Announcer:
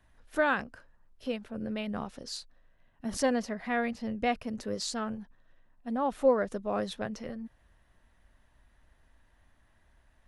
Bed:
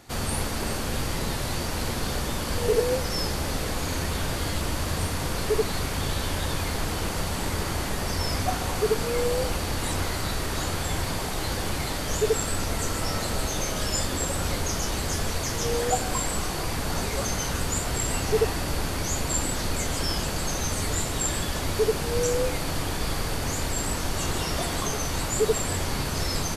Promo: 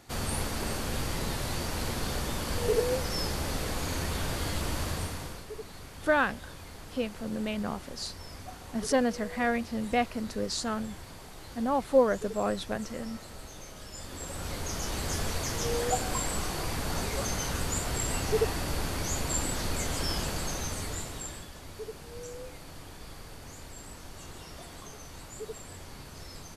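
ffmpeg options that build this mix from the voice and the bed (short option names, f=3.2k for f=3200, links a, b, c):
-filter_complex "[0:a]adelay=5700,volume=2dB[a];[1:a]volume=9.5dB,afade=t=out:st=4.82:d=0.63:silence=0.211349,afade=t=in:st=13.94:d=1.21:silence=0.211349,afade=t=out:st=20.26:d=1.24:silence=0.211349[b];[a][b]amix=inputs=2:normalize=0"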